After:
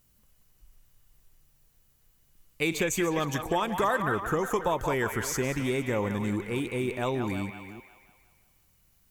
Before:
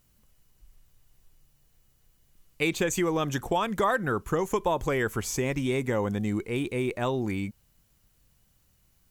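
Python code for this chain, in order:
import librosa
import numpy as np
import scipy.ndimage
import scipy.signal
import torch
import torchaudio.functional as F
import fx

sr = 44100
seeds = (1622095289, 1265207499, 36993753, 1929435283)

y = fx.reverse_delay(x, sr, ms=300, wet_db=-13.5)
y = fx.high_shelf(y, sr, hz=8700.0, db=4.5)
y = fx.echo_wet_bandpass(y, sr, ms=179, feedback_pct=50, hz=1500.0, wet_db=-5)
y = y * librosa.db_to_amplitude(-1.5)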